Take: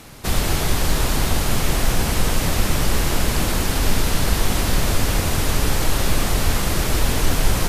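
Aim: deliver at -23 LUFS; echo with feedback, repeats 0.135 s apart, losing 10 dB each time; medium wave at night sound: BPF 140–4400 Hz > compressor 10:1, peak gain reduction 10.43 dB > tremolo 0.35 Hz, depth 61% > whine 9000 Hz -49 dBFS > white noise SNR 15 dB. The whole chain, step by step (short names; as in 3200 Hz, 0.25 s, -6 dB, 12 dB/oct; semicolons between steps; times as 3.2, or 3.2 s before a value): BPF 140–4400 Hz; feedback echo 0.135 s, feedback 32%, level -10 dB; compressor 10:1, threshold -30 dBFS; tremolo 0.35 Hz, depth 61%; whine 9000 Hz -49 dBFS; white noise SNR 15 dB; gain +13 dB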